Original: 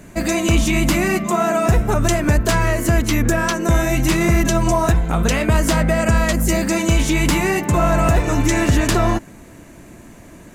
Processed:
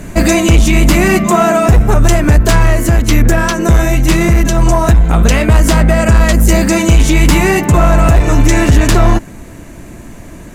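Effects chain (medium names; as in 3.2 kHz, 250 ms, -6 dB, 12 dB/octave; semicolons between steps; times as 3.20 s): bass shelf 79 Hz +9 dB; gain riding 0.5 s; sine folder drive 4 dB, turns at -1 dBFS; 2.58–4.87 s: tremolo saw down 2 Hz, depth 30%; trim -1 dB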